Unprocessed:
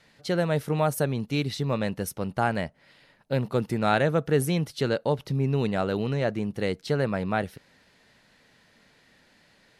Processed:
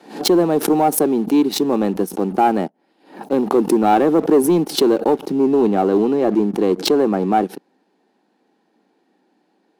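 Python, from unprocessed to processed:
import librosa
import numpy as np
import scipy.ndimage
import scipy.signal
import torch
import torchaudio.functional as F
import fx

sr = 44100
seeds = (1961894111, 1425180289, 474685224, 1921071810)

y = fx.peak_eq(x, sr, hz=350.0, db=5.5, octaves=2.1)
y = fx.notch(y, sr, hz=2000.0, q=9.5)
y = fx.small_body(y, sr, hz=(330.0, 780.0), ring_ms=20, db=17)
y = fx.leveller(y, sr, passes=1)
y = scipy.signal.sosfilt(scipy.signal.cheby1(4, 1.0, 180.0, 'highpass', fs=sr, output='sos'), y)
y = fx.leveller(y, sr, passes=1)
y = fx.high_shelf(y, sr, hz=7700.0, db=fx.steps((0.0, 8.0), (5.32, 2.5)))
y = fx.pre_swell(y, sr, db_per_s=130.0)
y = y * 10.0 ** (-9.5 / 20.0)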